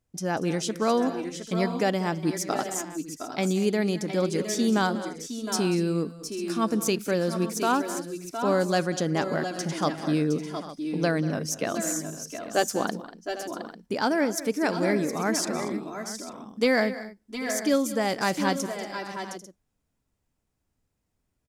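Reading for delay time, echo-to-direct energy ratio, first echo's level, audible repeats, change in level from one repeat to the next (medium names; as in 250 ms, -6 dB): 190 ms, -6.5 dB, -16.5 dB, 5, no regular repeats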